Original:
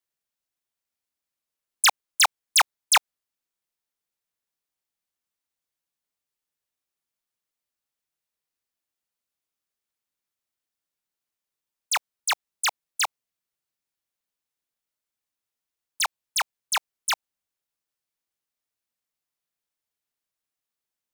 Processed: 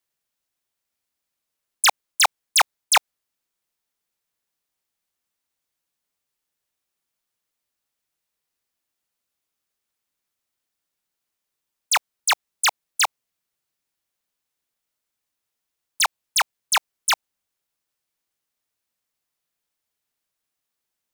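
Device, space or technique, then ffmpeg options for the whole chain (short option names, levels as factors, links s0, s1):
compression on the reversed sound: -af "areverse,acompressor=threshold=0.1:ratio=6,areverse,volume=1.88"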